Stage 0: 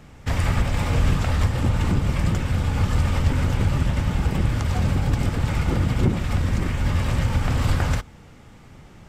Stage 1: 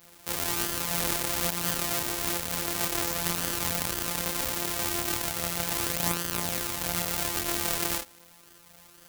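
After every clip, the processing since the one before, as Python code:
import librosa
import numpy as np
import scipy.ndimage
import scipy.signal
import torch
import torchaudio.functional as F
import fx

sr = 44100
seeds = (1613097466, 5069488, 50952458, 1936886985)

y = np.r_[np.sort(x[:len(x) // 256 * 256].reshape(-1, 256), axis=1).ravel(), x[len(x) // 256 * 256:]]
y = fx.chorus_voices(y, sr, voices=2, hz=0.4, base_ms=30, depth_ms=4.2, mix_pct=50)
y = fx.riaa(y, sr, side='recording')
y = y * librosa.db_to_amplitude(-4.5)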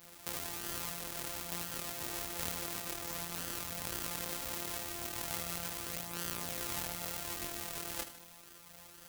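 y = fx.over_compress(x, sr, threshold_db=-35.0, ratio=-1.0)
y = fx.echo_feedback(y, sr, ms=77, feedback_pct=48, wet_db=-12)
y = y * librosa.db_to_amplitude(-6.0)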